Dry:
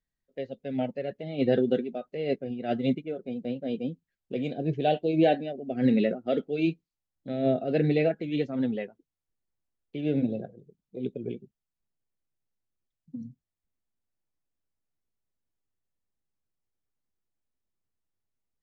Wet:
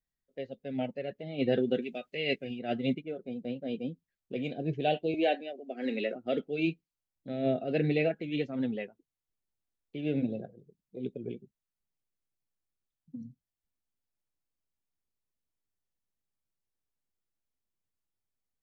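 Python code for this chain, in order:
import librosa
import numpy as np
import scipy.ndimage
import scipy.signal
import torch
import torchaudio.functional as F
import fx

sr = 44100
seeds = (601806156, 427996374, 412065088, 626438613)

y = fx.high_shelf_res(x, sr, hz=1600.0, db=8.0, q=1.5, at=(1.82, 2.59))
y = fx.bessel_highpass(y, sr, hz=380.0, order=8, at=(5.14, 6.16))
y = fx.dynamic_eq(y, sr, hz=2600.0, q=1.9, threshold_db=-51.0, ratio=4.0, max_db=6)
y = y * 10.0 ** (-4.0 / 20.0)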